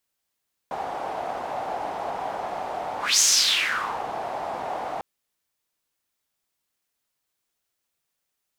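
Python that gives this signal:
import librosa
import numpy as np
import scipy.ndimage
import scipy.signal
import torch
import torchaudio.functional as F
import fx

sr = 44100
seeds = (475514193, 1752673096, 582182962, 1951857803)

y = fx.whoosh(sr, seeds[0], length_s=4.3, peak_s=2.49, rise_s=0.22, fall_s=0.88, ends_hz=760.0, peak_hz=6400.0, q=4.2, swell_db=13.0)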